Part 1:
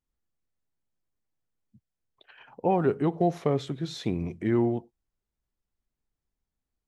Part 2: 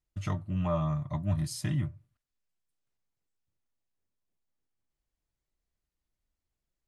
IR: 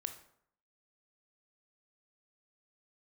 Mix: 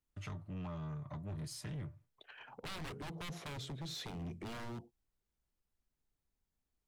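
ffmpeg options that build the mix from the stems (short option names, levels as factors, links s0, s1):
-filter_complex "[0:a]aeval=exprs='0.0398*(abs(mod(val(0)/0.0398+3,4)-2)-1)':c=same,volume=0.841[s0];[1:a]agate=range=0.0224:threshold=0.00355:ratio=3:detection=peak,equalizer=f=1000:w=0.31:g=9,volume=0.355[s1];[s0][s1]amix=inputs=2:normalize=0,acrossover=split=200|3000[s2][s3][s4];[s3]acompressor=threshold=0.00631:ratio=10[s5];[s2][s5][s4]amix=inputs=3:normalize=0,asoftclip=type=tanh:threshold=0.0112"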